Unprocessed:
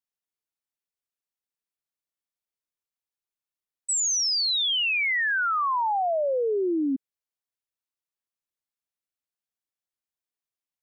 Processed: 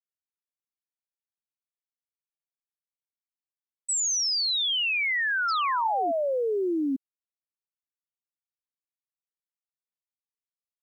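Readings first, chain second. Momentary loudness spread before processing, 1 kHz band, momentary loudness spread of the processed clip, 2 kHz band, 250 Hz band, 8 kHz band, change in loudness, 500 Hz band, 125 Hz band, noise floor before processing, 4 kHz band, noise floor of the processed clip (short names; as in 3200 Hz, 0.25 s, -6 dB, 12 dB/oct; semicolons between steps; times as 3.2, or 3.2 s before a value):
6 LU, -1.5 dB, 6 LU, -1.5 dB, -1.5 dB, -1.5 dB, -1.5 dB, -1.5 dB, n/a, under -85 dBFS, -1.5 dB, under -85 dBFS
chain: painted sound fall, 5.48–6.12, 260–5500 Hz -33 dBFS; bit-crush 11-bit; gain -1.5 dB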